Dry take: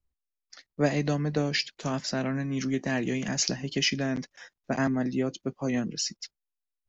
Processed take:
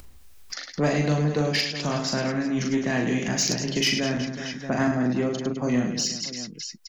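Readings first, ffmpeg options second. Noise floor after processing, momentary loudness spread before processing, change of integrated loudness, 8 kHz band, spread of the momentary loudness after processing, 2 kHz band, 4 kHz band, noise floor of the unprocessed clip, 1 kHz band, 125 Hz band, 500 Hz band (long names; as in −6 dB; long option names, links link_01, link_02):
−46 dBFS, 7 LU, +4.0 dB, can't be measured, 9 LU, +4.5 dB, +4.5 dB, below −85 dBFS, +4.5 dB, +4.5 dB, +4.0 dB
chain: -af "aecho=1:1:40|104|206.4|370.2|632.4:0.631|0.398|0.251|0.158|0.1,acompressor=mode=upward:threshold=-26dB:ratio=2.5,asoftclip=type=tanh:threshold=-16.5dB,volume=3dB"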